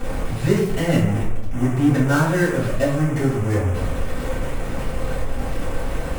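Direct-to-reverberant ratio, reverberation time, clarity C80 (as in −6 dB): −9.5 dB, 0.65 s, 6.5 dB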